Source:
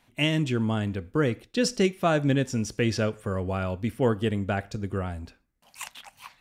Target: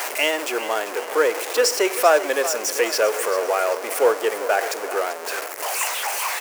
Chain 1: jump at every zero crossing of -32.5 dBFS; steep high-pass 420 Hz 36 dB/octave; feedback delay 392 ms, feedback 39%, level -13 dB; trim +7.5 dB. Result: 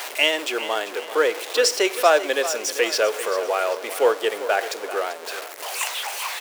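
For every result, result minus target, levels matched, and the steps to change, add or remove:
jump at every zero crossing: distortion -5 dB; 4 kHz band +3.5 dB
change: jump at every zero crossing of -26 dBFS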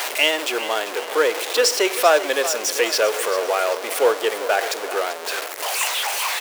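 4 kHz band +4.0 dB
add after steep high-pass: peaking EQ 3.6 kHz -8.5 dB 0.76 oct

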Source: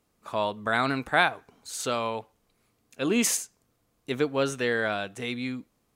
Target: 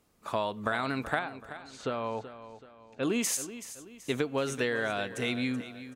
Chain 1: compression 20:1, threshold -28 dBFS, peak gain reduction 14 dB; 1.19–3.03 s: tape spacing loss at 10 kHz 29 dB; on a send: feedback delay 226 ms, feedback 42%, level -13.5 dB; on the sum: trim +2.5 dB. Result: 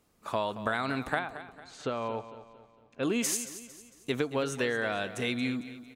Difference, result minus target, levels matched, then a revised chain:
echo 153 ms early
compression 20:1, threshold -28 dBFS, peak gain reduction 14 dB; 1.19–3.03 s: tape spacing loss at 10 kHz 29 dB; on a send: feedback delay 379 ms, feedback 42%, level -13.5 dB; on the sum: trim +2.5 dB

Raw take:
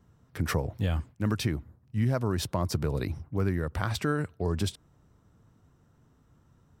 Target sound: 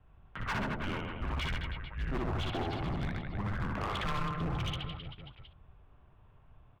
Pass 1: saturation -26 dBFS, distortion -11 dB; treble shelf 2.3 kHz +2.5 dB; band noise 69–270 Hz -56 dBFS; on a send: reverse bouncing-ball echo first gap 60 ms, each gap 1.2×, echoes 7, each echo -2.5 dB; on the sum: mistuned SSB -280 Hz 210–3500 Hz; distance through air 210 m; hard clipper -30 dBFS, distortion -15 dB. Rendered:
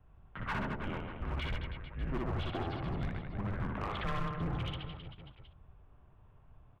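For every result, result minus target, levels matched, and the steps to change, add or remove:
saturation: distortion +7 dB; 4 kHz band -3.0 dB
change: saturation -19.5 dBFS, distortion -18 dB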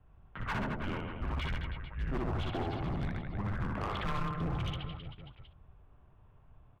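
4 kHz band -3.5 dB
change: treble shelf 2.3 kHz +9.5 dB

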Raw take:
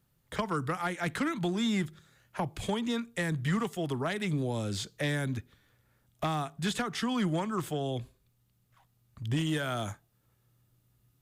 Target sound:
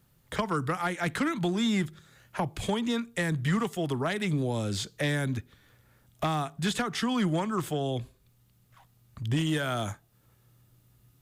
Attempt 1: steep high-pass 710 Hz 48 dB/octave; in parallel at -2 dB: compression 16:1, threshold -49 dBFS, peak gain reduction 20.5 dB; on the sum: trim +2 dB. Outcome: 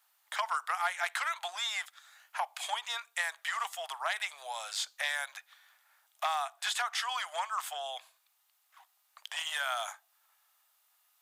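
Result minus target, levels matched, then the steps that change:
1 kHz band +4.5 dB
remove: steep high-pass 710 Hz 48 dB/octave

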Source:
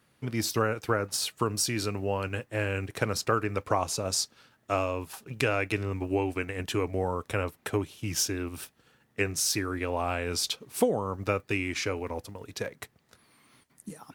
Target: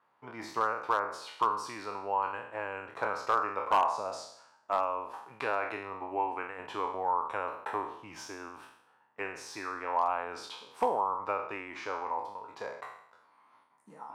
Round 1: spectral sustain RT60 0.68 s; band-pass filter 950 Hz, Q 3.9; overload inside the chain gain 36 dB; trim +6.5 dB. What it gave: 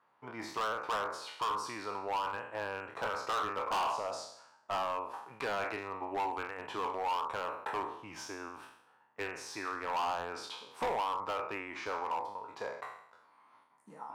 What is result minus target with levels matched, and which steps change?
overload inside the chain: distortion +14 dB
change: overload inside the chain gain 24.5 dB

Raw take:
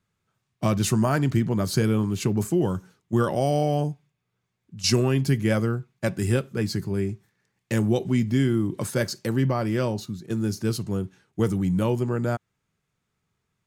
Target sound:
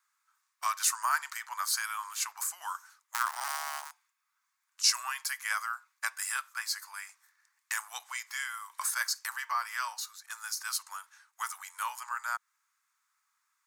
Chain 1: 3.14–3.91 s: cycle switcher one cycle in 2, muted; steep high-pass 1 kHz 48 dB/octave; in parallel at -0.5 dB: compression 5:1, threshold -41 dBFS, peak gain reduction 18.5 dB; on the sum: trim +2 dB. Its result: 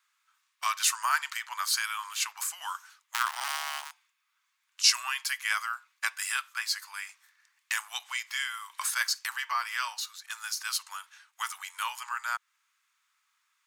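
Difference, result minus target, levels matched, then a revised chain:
4 kHz band +2.5 dB
3.14–3.91 s: cycle switcher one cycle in 2, muted; steep high-pass 1 kHz 48 dB/octave; peaking EQ 3 kHz -11.5 dB 1.1 oct; in parallel at -0.5 dB: compression 5:1, threshold -41 dBFS, peak gain reduction 15.5 dB; on the sum: trim +2 dB

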